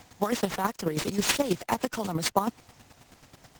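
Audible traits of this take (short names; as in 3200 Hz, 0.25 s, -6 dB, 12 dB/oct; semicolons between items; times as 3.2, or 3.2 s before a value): aliases and images of a low sample rate 13000 Hz, jitter 0%; chopped level 9.3 Hz, depth 60%, duty 20%; Opus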